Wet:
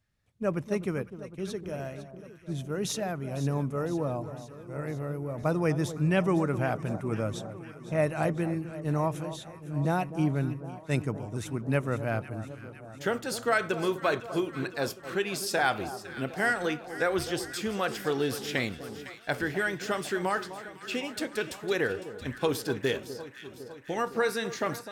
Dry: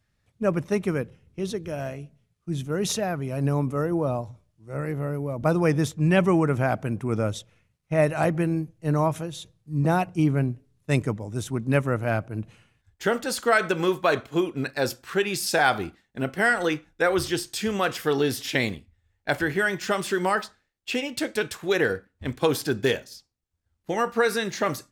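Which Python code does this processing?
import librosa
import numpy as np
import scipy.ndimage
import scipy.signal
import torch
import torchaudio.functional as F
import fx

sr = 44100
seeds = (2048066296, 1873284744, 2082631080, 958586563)

y = fx.echo_alternate(x, sr, ms=253, hz=1200.0, feedback_pct=80, wet_db=-12.0)
y = y * librosa.db_to_amplitude(-5.5)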